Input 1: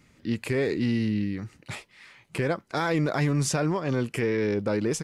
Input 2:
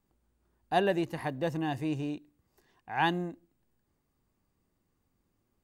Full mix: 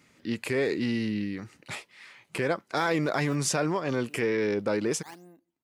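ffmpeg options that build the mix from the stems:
ffmpeg -i stem1.wav -i stem2.wav -filter_complex "[0:a]volume=1dB,asplit=2[link_01][link_02];[1:a]acrusher=samples=16:mix=1:aa=0.000001:lfo=1:lforange=25.6:lforate=0.83,aeval=exprs='val(0)*pow(10,-23*if(lt(mod(-0.76*n/s,1),2*abs(-0.76)/1000),1-mod(-0.76*n/s,1)/(2*abs(-0.76)/1000),(mod(-0.76*n/s,1)-2*abs(-0.76)/1000)/(1-2*abs(-0.76)/1000))/20)':channel_layout=same,adelay=2050,volume=-1.5dB[link_03];[link_02]apad=whole_len=339109[link_04];[link_03][link_04]sidechaincompress=threshold=-36dB:ratio=6:attack=29:release=138[link_05];[link_01][link_05]amix=inputs=2:normalize=0,highpass=frequency=280:poles=1" out.wav

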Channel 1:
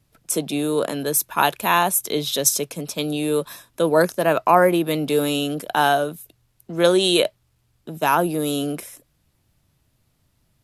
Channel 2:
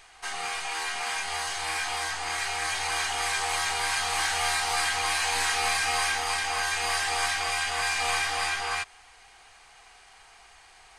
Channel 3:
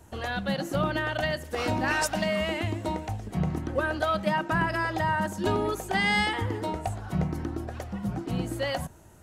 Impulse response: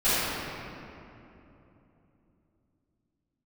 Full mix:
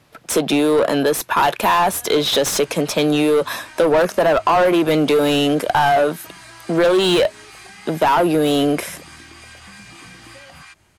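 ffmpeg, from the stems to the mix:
-filter_complex "[0:a]asplit=2[link_01][link_02];[link_02]highpass=frequency=720:poles=1,volume=26dB,asoftclip=type=tanh:threshold=-1.5dB[link_03];[link_01][link_03]amix=inputs=2:normalize=0,lowpass=frequency=1700:poles=1,volume=-6dB,volume=1dB[link_04];[1:a]highpass=frequency=1000:width=0.5412,highpass=frequency=1000:width=1.3066,adelay=1900,volume=-8dB[link_05];[2:a]acompressor=threshold=-29dB:ratio=6,adelay=1750,volume=-6dB[link_06];[link_05][link_06]amix=inputs=2:normalize=0,acompressor=threshold=-38dB:ratio=5,volume=0dB[link_07];[link_04][link_07]amix=inputs=2:normalize=0,acompressor=threshold=-15dB:ratio=2.5"

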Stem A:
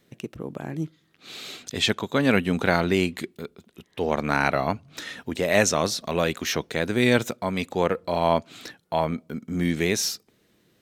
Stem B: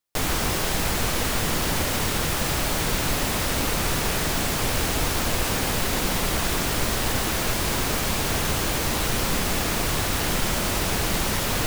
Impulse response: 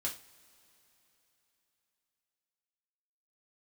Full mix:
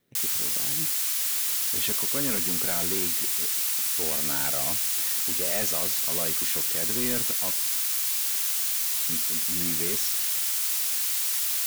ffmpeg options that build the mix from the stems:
-filter_complex "[0:a]volume=17dB,asoftclip=hard,volume=-17dB,volume=-11.5dB,asplit=3[link_01][link_02][link_03];[link_01]atrim=end=7.51,asetpts=PTS-STARTPTS,afade=type=out:start_time=7.506:duration=0.004:curve=hsin[link_04];[link_02]atrim=start=7.51:end=9.09,asetpts=PTS-STARTPTS,volume=0[link_05];[link_03]atrim=start=9.09,asetpts=PTS-STARTPTS,afade=type=in:duration=0.004:curve=hsin[link_06];[link_04][link_05][link_06]concat=n=3:v=0:a=1,asplit=2[link_07][link_08];[link_08]volume=-10.5dB[link_09];[1:a]highpass=frequency=930:poles=1,aderivative,volume=1dB[link_10];[2:a]atrim=start_sample=2205[link_11];[link_09][link_11]afir=irnorm=-1:irlink=0[link_12];[link_07][link_10][link_12]amix=inputs=3:normalize=0"

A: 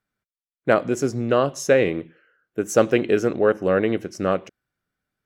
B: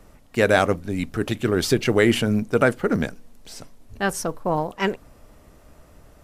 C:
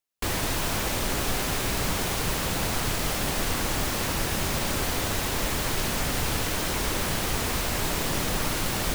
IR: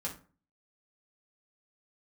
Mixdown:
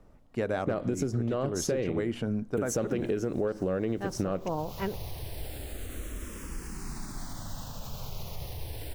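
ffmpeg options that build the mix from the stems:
-filter_complex "[0:a]asoftclip=type=tanh:threshold=-4.5dB,volume=1.5dB,asplit=2[link_01][link_02];[1:a]aemphasis=mode=reproduction:type=75kf,volume=-6.5dB[link_03];[2:a]alimiter=limit=-21.5dB:level=0:latency=1:release=116,asplit=2[link_04][link_05];[link_05]afreqshift=-0.29[link_06];[link_04][link_06]amix=inputs=2:normalize=1,adelay=2350,volume=-8dB[link_07];[link_02]apad=whole_len=498327[link_08];[link_07][link_08]sidechaincompress=threshold=-28dB:ratio=5:attack=8.2:release=439[link_09];[link_01][link_09]amix=inputs=2:normalize=0,lowshelf=frequency=140:gain=10.5,alimiter=limit=-12.5dB:level=0:latency=1:release=135,volume=0dB[link_10];[link_03][link_10]amix=inputs=2:normalize=0,equalizer=frequency=2100:width=0.79:gain=-5,acompressor=threshold=-26dB:ratio=6"

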